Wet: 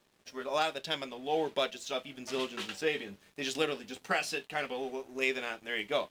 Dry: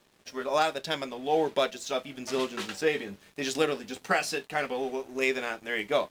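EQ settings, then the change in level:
dynamic equaliser 3,000 Hz, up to +6 dB, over −48 dBFS, Q 2
−5.5 dB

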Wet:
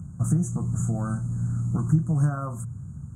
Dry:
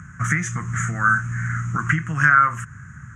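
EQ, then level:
elliptic band-stop filter 730–8,700 Hz, stop band 80 dB
mains-hum notches 60/120 Hz
+3.5 dB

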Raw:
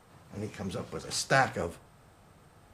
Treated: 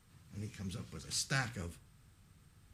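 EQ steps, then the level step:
guitar amp tone stack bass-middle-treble 6-0-2
+11.0 dB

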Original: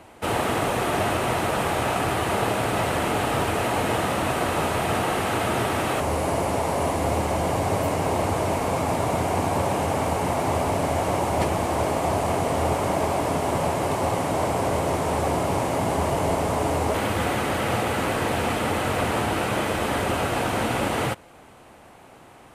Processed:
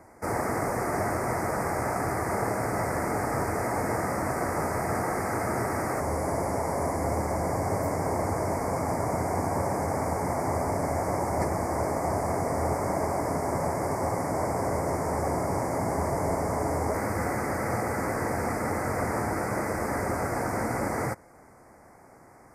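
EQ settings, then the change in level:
elliptic band-stop filter 2,100–4,900 Hz, stop band 70 dB
−4.0 dB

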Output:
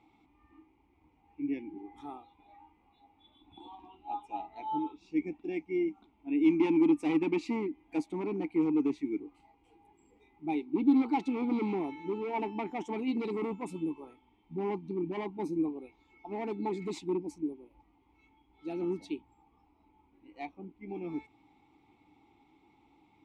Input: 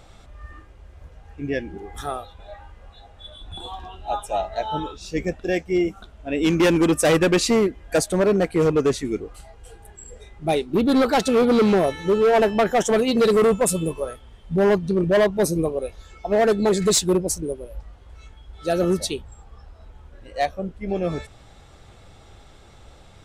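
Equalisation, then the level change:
formant filter u
0.0 dB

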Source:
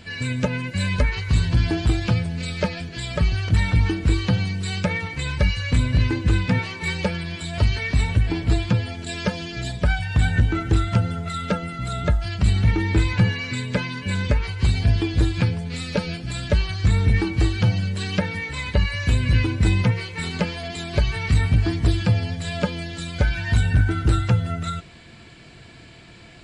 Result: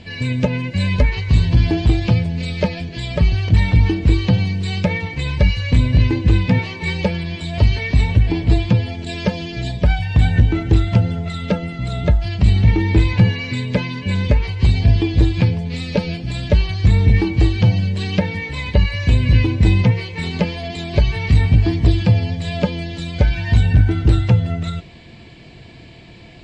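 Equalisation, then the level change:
high-frequency loss of the air 110 metres
parametric band 1,400 Hz −11 dB 0.56 octaves
+5.5 dB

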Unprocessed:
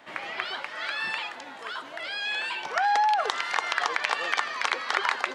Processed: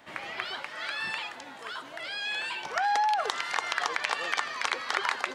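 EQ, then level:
low-shelf EQ 140 Hz +12 dB
high-shelf EQ 7,200 Hz +8.5 dB
−3.5 dB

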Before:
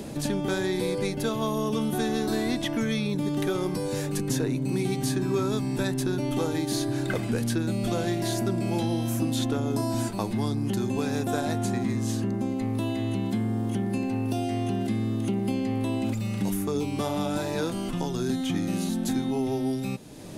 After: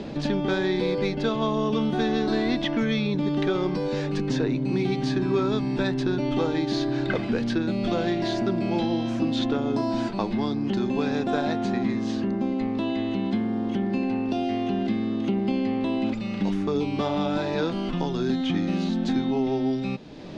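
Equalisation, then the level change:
low-pass filter 4,600 Hz 24 dB per octave
parametric band 110 Hz −13.5 dB 0.27 octaves
+3.0 dB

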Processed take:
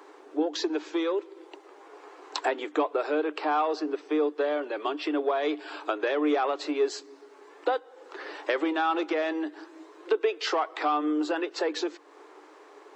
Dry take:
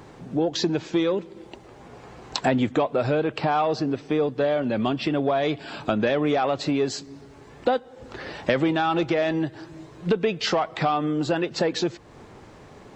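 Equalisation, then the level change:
Chebyshev high-pass with heavy ripple 290 Hz, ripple 6 dB
0.0 dB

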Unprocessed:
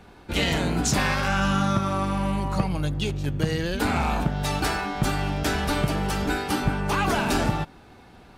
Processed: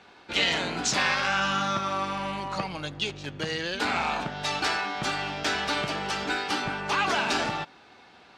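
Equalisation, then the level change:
high-pass filter 620 Hz 6 dB per octave
high-frequency loss of the air 150 metres
high-shelf EQ 3,000 Hz +11.5 dB
0.0 dB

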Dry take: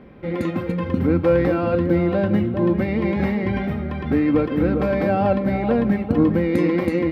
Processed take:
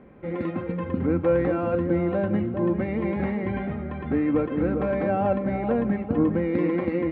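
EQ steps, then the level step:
high-frequency loss of the air 470 metres
low-shelf EQ 270 Hz −5.5 dB
−1.5 dB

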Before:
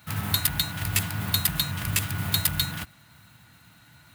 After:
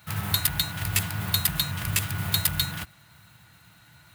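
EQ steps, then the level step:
parametric band 250 Hz −14.5 dB 0.21 octaves
0.0 dB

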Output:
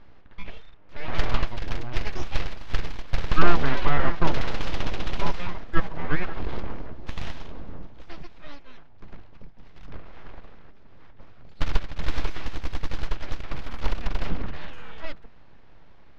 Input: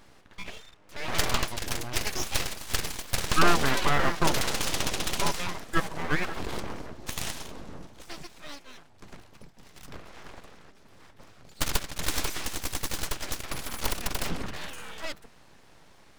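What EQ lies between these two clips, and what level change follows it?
high-frequency loss of the air 250 metres
low-shelf EQ 72 Hz +12 dB
0.0 dB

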